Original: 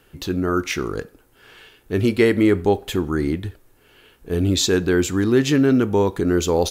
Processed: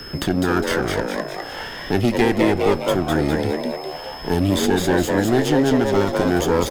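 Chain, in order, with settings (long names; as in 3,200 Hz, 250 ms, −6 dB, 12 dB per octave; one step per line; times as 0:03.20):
lower of the sound and its delayed copy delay 0.61 ms
echo with shifted repeats 203 ms, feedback 37%, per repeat +140 Hz, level −4 dB
steady tone 5,200 Hz −48 dBFS
multiband upward and downward compressor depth 70%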